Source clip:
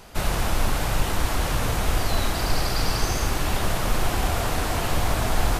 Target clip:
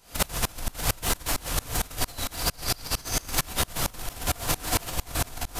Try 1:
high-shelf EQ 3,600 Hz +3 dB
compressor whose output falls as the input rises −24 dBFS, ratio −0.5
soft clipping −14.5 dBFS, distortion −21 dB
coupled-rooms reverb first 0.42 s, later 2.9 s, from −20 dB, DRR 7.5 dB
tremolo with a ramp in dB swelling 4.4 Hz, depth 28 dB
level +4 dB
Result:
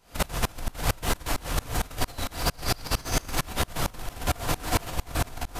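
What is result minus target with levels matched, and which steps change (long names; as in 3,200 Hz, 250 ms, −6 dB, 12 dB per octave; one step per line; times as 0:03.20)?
8,000 Hz band −3.5 dB
change: high-shelf EQ 3,600 Hz +11.5 dB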